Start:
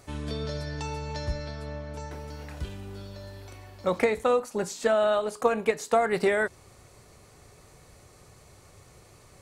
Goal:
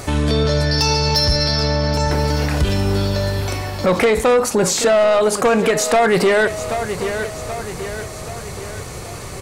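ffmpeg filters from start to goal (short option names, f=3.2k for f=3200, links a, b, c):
-filter_complex "[0:a]asettb=1/sr,asplit=3[a][b][c];[a]atrim=end=0.714[d];[b]atrim=start=0.71:end=1.94,asetpts=PTS-STARTPTS,afade=t=in:d=0.004:c=qsin,afade=t=out:st=1.226:d=0.004:c=qsin,lowpass=f=5.1k:t=q:w=14[e];[c]atrim=start=1.936[f];[d][e]acrossfade=d=0.004:c1=hsin:c2=qsin[g];[g][f]acrossfade=d=0.004:c1=qsin:c2=hsin,asoftclip=type=tanh:threshold=-23dB,aecho=1:1:780|1560|2340|3120:0.126|0.0642|0.0327|0.0167,alimiter=level_in=31dB:limit=-1dB:release=50:level=0:latency=1,volume=-8.5dB"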